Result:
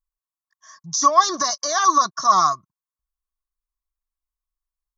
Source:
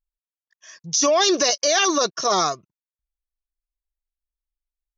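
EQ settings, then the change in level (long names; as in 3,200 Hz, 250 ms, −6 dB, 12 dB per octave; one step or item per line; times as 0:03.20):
parametric band 1,100 Hz +13 dB 0.22 octaves
phaser with its sweep stopped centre 1,100 Hz, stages 4
0.0 dB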